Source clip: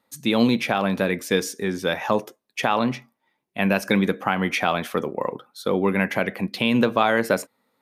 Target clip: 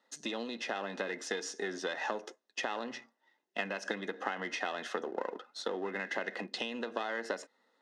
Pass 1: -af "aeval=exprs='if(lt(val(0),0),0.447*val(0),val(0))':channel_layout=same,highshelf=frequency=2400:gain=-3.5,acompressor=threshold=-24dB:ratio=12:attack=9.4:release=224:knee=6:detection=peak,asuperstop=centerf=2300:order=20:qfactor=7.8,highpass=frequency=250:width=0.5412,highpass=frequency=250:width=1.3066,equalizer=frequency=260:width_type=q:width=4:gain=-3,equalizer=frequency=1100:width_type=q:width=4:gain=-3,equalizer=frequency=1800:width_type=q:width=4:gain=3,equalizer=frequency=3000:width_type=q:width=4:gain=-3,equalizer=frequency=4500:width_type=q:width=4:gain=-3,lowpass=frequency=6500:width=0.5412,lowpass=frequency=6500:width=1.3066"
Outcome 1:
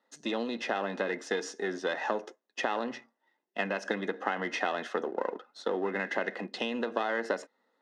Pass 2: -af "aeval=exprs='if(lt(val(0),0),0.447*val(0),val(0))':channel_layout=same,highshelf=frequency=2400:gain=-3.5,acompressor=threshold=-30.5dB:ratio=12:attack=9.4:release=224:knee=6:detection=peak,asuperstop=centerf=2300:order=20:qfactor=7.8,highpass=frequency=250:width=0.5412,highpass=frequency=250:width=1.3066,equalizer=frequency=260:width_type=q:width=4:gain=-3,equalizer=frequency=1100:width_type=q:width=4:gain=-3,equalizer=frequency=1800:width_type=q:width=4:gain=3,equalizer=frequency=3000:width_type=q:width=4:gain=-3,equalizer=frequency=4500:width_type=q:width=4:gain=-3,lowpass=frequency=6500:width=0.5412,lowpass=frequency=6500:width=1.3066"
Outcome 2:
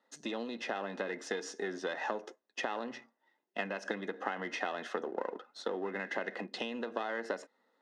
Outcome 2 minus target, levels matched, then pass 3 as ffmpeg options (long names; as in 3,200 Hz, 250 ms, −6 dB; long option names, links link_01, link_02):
4,000 Hz band −3.0 dB
-af "aeval=exprs='if(lt(val(0),0),0.447*val(0),val(0))':channel_layout=same,highshelf=frequency=2400:gain=4,acompressor=threshold=-30.5dB:ratio=12:attack=9.4:release=224:knee=6:detection=peak,asuperstop=centerf=2300:order=20:qfactor=7.8,highpass=frequency=250:width=0.5412,highpass=frequency=250:width=1.3066,equalizer=frequency=260:width_type=q:width=4:gain=-3,equalizer=frequency=1100:width_type=q:width=4:gain=-3,equalizer=frequency=1800:width_type=q:width=4:gain=3,equalizer=frequency=3000:width_type=q:width=4:gain=-3,equalizer=frequency=4500:width_type=q:width=4:gain=-3,lowpass=frequency=6500:width=0.5412,lowpass=frequency=6500:width=1.3066"